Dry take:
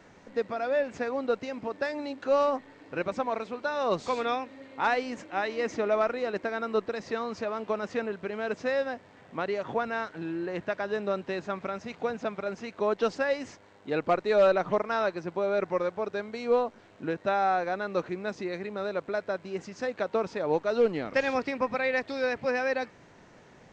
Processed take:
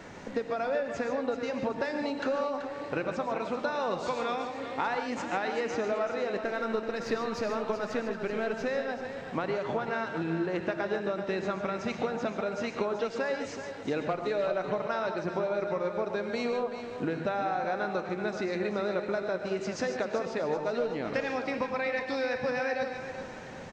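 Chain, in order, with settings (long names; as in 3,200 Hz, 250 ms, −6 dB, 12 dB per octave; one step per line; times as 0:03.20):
0:06.37–0:08.67: gain on one half-wave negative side −3 dB
downward compressor 10 to 1, threshold −37 dBFS, peak gain reduction 18.5 dB
repeating echo 382 ms, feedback 41%, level −10 dB
reverb whose tail is shaped and stops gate 170 ms rising, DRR 6 dB
level +8.5 dB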